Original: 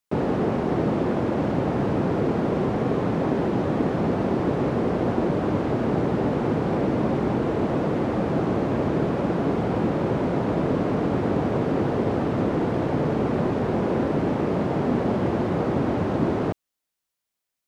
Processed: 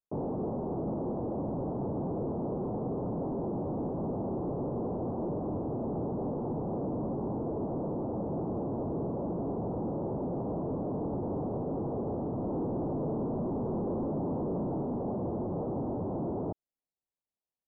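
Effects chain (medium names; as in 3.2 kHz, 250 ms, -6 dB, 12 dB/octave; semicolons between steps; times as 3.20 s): 12.49–14.83 s: peaking EQ 240 Hz +5 dB 2.5 oct; overload inside the chain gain 22.5 dB; steep low-pass 940 Hz 36 dB/octave; trim -7.5 dB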